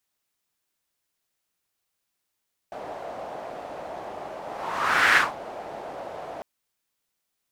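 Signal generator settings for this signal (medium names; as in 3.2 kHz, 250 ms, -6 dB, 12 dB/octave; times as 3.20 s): whoosh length 3.70 s, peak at 2.44 s, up 0.77 s, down 0.20 s, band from 670 Hz, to 1.7 kHz, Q 3.1, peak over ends 18.5 dB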